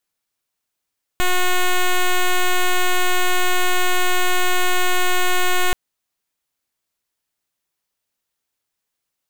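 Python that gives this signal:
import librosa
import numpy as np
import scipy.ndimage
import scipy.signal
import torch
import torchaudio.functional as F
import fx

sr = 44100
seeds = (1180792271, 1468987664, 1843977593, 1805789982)

y = fx.pulse(sr, length_s=4.53, hz=363.0, level_db=-15.5, duty_pct=7)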